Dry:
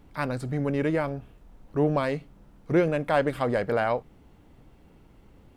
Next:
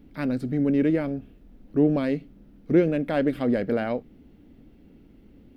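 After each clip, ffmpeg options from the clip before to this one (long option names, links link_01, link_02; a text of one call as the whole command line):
ffmpeg -i in.wav -af "equalizer=frequency=125:width_type=o:width=1:gain=-4,equalizer=frequency=250:width_type=o:width=1:gain=10,equalizer=frequency=1000:width_type=o:width=1:gain=-11,equalizer=frequency=8000:width_type=o:width=1:gain=-10" out.wav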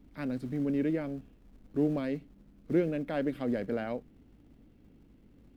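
ffmpeg -i in.wav -filter_complex "[0:a]aeval=exprs='val(0)+0.002*(sin(2*PI*50*n/s)+sin(2*PI*2*50*n/s)/2+sin(2*PI*3*50*n/s)/3+sin(2*PI*4*50*n/s)/4+sin(2*PI*5*50*n/s)/5)':channel_layout=same,acrossover=split=130[link_01][link_02];[link_01]acrusher=bits=3:mode=log:mix=0:aa=0.000001[link_03];[link_03][link_02]amix=inputs=2:normalize=0,volume=-8dB" out.wav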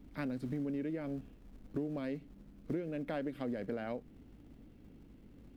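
ffmpeg -i in.wav -af "acompressor=threshold=-36dB:ratio=10,volume=2dB" out.wav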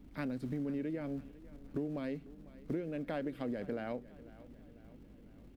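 ffmpeg -i in.wav -af "aecho=1:1:498|996|1494|1992:0.112|0.0583|0.0303|0.0158" out.wav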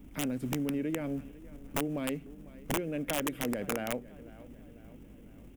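ffmpeg -i in.wav -af "aeval=exprs='(mod(28.2*val(0)+1,2)-1)/28.2':channel_layout=same,aexciter=amount=1.4:drive=1.9:freq=2300,volume=4.5dB" out.wav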